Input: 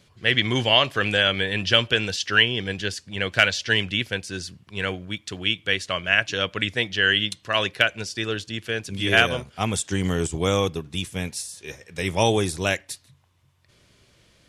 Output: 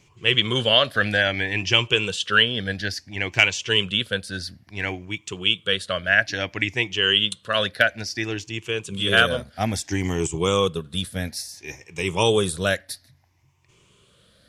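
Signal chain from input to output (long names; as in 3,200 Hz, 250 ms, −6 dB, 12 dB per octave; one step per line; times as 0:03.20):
rippled gain that drifts along the octave scale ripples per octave 0.71, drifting +0.59 Hz, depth 11 dB
level −1 dB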